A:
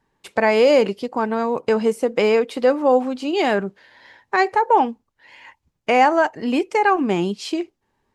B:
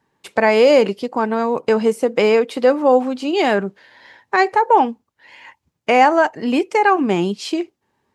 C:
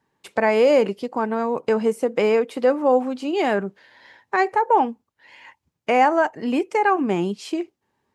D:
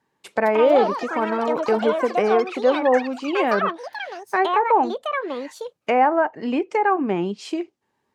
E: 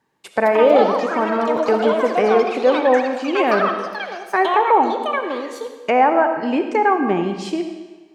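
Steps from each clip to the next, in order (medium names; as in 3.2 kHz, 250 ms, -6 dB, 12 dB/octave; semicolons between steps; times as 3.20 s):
high-pass 87 Hz; trim +2.5 dB
dynamic bell 4.2 kHz, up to -6 dB, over -39 dBFS, Q 1.1; trim -4 dB
bass shelf 97 Hz -8.5 dB; low-pass that closes with the level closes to 1.8 kHz, closed at -15.5 dBFS; ever faster or slower copies 286 ms, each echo +6 st, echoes 3, each echo -6 dB
algorithmic reverb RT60 1.3 s, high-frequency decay 0.95×, pre-delay 25 ms, DRR 6.5 dB; trim +2.5 dB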